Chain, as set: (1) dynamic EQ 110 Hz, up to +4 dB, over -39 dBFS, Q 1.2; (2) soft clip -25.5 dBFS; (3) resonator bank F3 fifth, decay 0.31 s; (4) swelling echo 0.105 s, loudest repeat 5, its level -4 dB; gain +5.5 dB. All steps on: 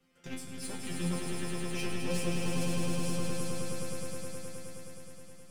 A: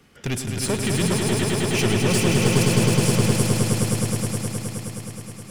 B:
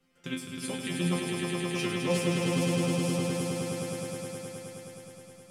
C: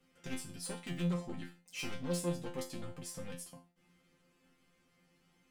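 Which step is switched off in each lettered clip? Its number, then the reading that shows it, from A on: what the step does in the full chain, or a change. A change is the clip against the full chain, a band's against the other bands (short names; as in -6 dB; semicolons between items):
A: 3, 125 Hz band +2.5 dB; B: 2, distortion -8 dB; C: 4, momentary loudness spread change -3 LU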